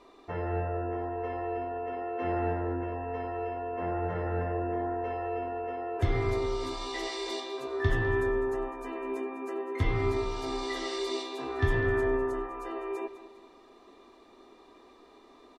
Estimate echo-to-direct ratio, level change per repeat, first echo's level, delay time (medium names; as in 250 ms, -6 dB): -13.0 dB, -7.5 dB, -13.5 dB, 202 ms